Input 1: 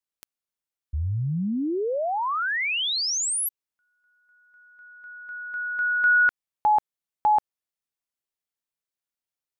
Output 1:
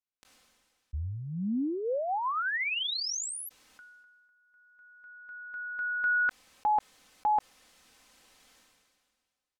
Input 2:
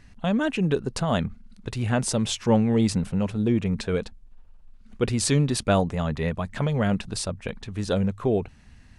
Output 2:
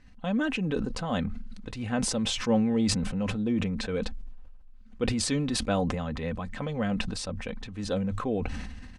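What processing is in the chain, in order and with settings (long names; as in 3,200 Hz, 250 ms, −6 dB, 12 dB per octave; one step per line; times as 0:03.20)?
high-frequency loss of the air 50 metres
comb filter 3.9 ms, depth 51%
level that may fall only so fast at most 31 dB per second
level −6.5 dB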